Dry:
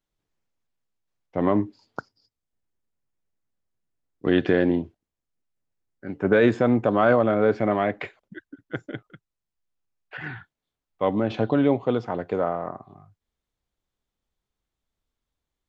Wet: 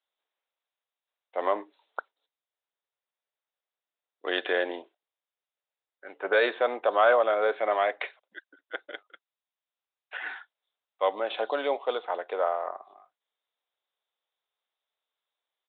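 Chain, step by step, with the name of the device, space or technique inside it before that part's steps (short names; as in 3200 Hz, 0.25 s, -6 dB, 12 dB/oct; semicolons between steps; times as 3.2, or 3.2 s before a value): musical greeting card (downsampling 8000 Hz; HPF 520 Hz 24 dB/oct; bell 3900 Hz +9.5 dB 0.4 oct)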